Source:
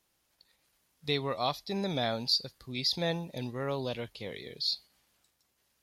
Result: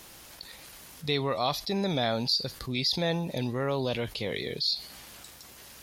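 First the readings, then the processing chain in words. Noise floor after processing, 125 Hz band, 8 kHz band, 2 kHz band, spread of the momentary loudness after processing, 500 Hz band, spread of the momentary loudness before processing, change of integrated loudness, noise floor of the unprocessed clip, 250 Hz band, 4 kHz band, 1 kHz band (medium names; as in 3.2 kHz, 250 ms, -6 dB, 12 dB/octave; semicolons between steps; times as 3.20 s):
-50 dBFS, +5.0 dB, +5.5 dB, +4.0 dB, 19 LU, +4.0 dB, 11 LU, +3.5 dB, -76 dBFS, +5.0 dB, +2.5 dB, +3.5 dB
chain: level flattener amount 50%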